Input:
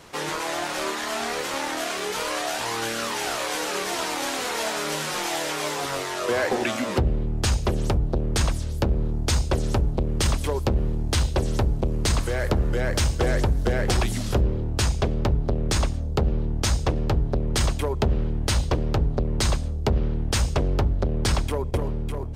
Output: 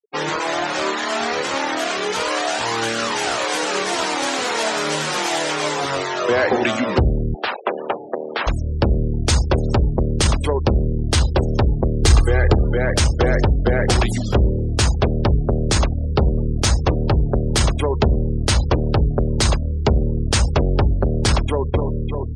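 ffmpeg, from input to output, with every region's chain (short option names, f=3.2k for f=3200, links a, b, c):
-filter_complex "[0:a]asettb=1/sr,asplit=3[a][b][c];[a]atrim=end=7.344[d];[b]atrim=start=7.34:end=8.47,asetpts=PTS-STARTPTS,afade=t=in:d=0.004:c=qsin,afade=t=out:st=1.126:d=0.004:c=qsin,asplit=2[e][f];[f]highpass=f=720:p=1,volume=14dB,asoftclip=type=tanh:threshold=-13.5dB[g];[e][g]amix=inputs=2:normalize=0,lowpass=f=2.1k:p=1,volume=-6dB,highpass=470,lowpass=3.3k[h];[c]atrim=start=8.466[i];[d][h]acrossfade=d=0.004:c1=hsin:c2=qsin[j];[j][i]acrossfade=d=0.004:c1=qsin:c2=hsin,asettb=1/sr,asplit=3[k][l][m];[k]atrim=end=12.024[n];[l]atrim=start=12.02:end=12.55,asetpts=PTS-STARTPTS,afade=t=in:d=0.004:c=qsin,afade=t=out:st=0.526:d=0.004:c=qsin,lowshelf=f=170:g=5.5,aecho=1:1:2.5:0.44,atrim=end_sample=23373[o];[m]atrim=start=12.546[p];[n][o]acrossfade=d=0.004:c1=hsin:c2=qsin[q];[q][p]acrossfade=d=0.004:c1=qsin:c2=hsin,asettb=1/sr,asplit=3[r][s][t];[r]atrim=end=15.664[u];[s]atrim=start=15.66:end=18.02,asetpts=PTS-STARTPTS,afade=t=in:d=0.004:c=qsin,afade=t=out:st=2.356:d=0.004:c=qsin,bandreject=f=236.3:t=h:w=4,bandreject=f=472.6:t=h:w=4,bandreject=f=708.9:t=h:w=4,bandreject=f=945.2:t=h:w=4,bandreject=f=1.1815k:t=h:w=4,bandreject=f=1.4178k:t=h:w=4,bandreject=f=1.6541k:t=h:w=4,bandreject=f=1.8904k:t=h:w=4,bandreject=f=2.1267k:t=h:w=4,bandreject=f=2.363k:t=h:w=4,bandreject=f=2.5993k:t=h:w=4,bandreject=f=2.8356k:t=h:w=4,bandreject=f=3.0719k:t=h:w=4,bandreject=f=3.3082k:t=h:w=4,bandreject=f=3.5445k:t=h:w=4,bandreject=f=3.7808k:t=h:w=4,bandreject=f=4.0171k:t=h:w=4,bandreject=f=4.2534k:t=h:w=4,bandreject=f=4.4897k:t=h:w=4,bandreject=f=4.726k:t=h:w=4,bandreject=f=4.9623k:t=h:w=4,bandreject=f=5.1986k:t=h:w=4,bandreject=f=5.4349k:t=h:w=4,bandreject=f=5.6712k:t=h:w=4,bandreject=f=5.9075k:t=h:w=4,asplit=5[v][w][x][y][z];[w]adelay=209,afreqshift=-99,volume=-22dB[aa];[x]adelay=418,afreqshift=-198,volume=-26.6dB[ab];[y]adelay=627,afreqshift=-297,volume=-31.2dB[ac];[z]adelay=836,afreqshift=-396,volume=-35.7dB[ad];[v][aa][ab][ac][ad]amix=inputs=5:normalize=0,atrim=end_sample=104076[ae];[t]atrim=start=18.016[af];[u][ae]acrossfade=d=0.004:c1=hsin:c2=qsin[ag];[ag][af]acrossfade=d=0.004:c1=qsin:c2=hsin,highpass=41,afftfilt=real='re*gte(hypot(re,im),0.0224)':imag='im*gte(hypot(re,im),0.0224)':win_size=1024:overlap=0.75,acontrast=68"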